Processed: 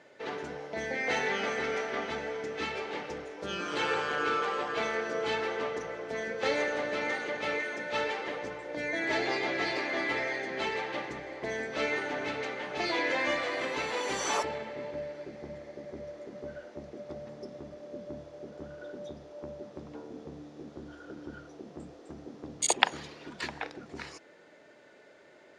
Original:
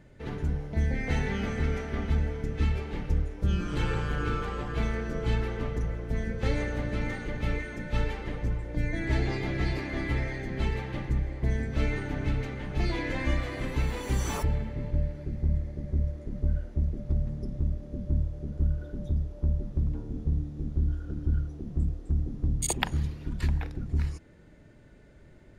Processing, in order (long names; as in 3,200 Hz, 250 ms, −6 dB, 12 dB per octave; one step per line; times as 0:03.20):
Chebyshev band-pass filter 530–5,900 Hz, order 2
level +6.5 dB